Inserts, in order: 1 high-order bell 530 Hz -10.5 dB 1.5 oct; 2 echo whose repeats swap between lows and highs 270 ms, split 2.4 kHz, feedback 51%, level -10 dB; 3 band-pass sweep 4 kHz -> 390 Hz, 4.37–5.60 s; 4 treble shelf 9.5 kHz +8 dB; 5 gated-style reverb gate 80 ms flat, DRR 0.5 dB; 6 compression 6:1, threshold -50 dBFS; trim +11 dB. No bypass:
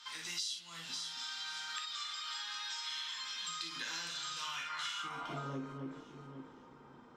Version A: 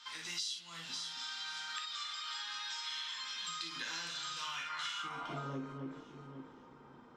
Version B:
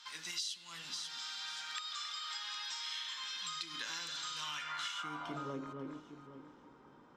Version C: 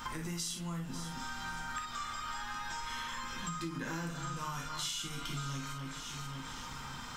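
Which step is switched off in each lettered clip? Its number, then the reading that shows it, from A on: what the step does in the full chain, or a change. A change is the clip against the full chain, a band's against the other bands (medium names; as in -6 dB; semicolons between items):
4, 8 kHz band -1.5 dB; 5, crest factor change +1.5 dB; 3, 125 Hz band +8.0 dB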